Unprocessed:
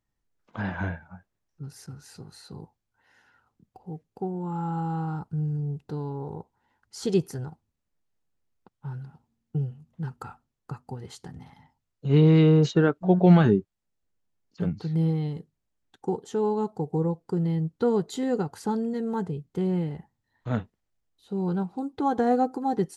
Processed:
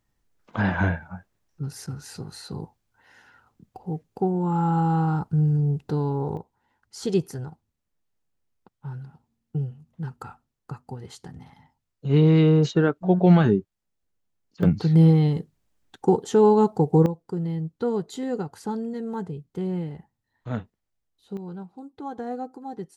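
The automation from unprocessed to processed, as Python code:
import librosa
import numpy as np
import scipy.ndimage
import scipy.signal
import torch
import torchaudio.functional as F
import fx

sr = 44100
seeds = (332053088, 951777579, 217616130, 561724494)

y = fx.gain(x, sr, db=fx.steps((0.0, 7.5), (6.37, 0.5), (14.63, 9.0), (17.06, -2.0), (21.37, -9.5)))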